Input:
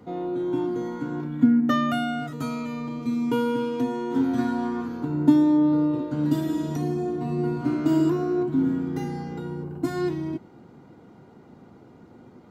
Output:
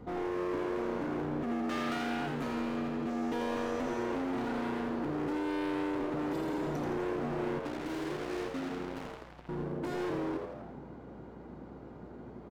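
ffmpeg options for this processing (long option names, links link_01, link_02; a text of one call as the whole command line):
ffmpeg -i in.wav -filter_complex "[0:a]highshelf=frequency=3600:gain=-10.5,acrossover=split=150|3100[link_01][link_02][link_03];[link_01]acompressor=threshold=-49dB:ratio=6[link_04];[link_02]alimiter=limit=-19dB:level=0:latency=1:release=189[link_05];[link_04][link_05][link_03]amix=inputs=3:normalize=0,asettb=1/sr,asplit=3[link_06][link_07][link_08];[link_06]atrim=end=3.094[link_09];[link_07]atrim=start=3.09:end=4.04,asetpts=PTS-STARTPTS,afade=type=in:duration=0.004:curve=qsin,afade=type=out:start_time=0.946:duration=0.004:curve=qsin,aeval=exprs='val(0)+0.00178*sin(2*PI*5900*n/s)':channel_layout=same[link_10];[link_08]atrim=start=4.036[link_11];[link_09][link_10]acrossfade=duration=0.004:curve1=hsin:curve2=qsin[link_12];[link_12][link_11]acrossfade=duration=0.004:curve1=qsin:curve2=hsin,asettb=1/sr,asplit=3[link_13][link_14][link_15];[link_13]atrim=end=7.594[link_16];[link_14]atrim=start=7.59:end=9.49,asetpts=PTS-STARTPTS,afade=type=in:duration=0.004:curve=qsin,afade=type=out:start_time=1.896:duration=0.004:curve=qsin,acrusher=bits=3:mix=0:aa=0.5[link_17];[link_15]atrim=start=9.486[link_18];[link_16][link_17]acrossfade=duration=0.004:curve1=hsin:curve2=qsin[link_19];[link_19][link_18]acrossfade=duration=0.004:curve1=qsin:curve2=hsin,volume=34dB,asoftclip=hard,volume=-34dB,aeval=exprs='val(0)+0.00158*(sin(2*PI*60*n/s)+sin(2*PI*2*60*n/s)/2+sin(2*PI*3*60*n/s)/3+sin(2*PI*4*60*n/s)/4+sin(2*PI*5*60*n/s)/5)':channel_layout=same,asplit=9[link_20][link_21][link_22][link_23][link_24][link_25][link_26][link_27][link_28];[link_21]adelay=83,afreqshift=92,volume=-6dB[link_29];[link_22]adelay=166,afreqshift=184,volume=-10.6dB[link_30];[link_23]adelay=249,afreqshift=276,volume=-15.2dB[link_31];[link_24]adelay=332,afreqshift=368,volume=-19.7dB[link_32];[link_25]adelay=415,afreqshift=460,volume=-24.3dB[link_33];[link_26]adelay=498,afreqshift=552,volume=-28.9dB[link_34];[link_27]adelay=581,afreqshift=644,volume=-33.5dB[link_35];[link_28]adelay=664,afreqshift=736,volume=-38.1dB[link_36];[link_20][link_29][link_30][link_31][link_32][link_33][link_34][link_35][link_36]amix=inputs=9:normalize=0" out.wav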